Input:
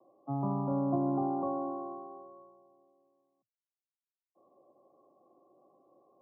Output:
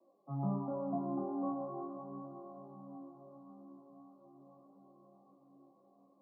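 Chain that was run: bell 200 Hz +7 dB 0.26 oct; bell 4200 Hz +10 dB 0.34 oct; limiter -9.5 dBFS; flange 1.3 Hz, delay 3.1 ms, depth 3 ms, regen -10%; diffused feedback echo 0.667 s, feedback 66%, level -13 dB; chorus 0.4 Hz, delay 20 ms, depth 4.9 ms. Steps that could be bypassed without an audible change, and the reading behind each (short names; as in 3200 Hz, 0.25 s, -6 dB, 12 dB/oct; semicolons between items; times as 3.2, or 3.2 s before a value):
bell 4200 Hz: input band ends at 1100 Hz; limiter -9.5 dBFS: input peak -17.5 dBFS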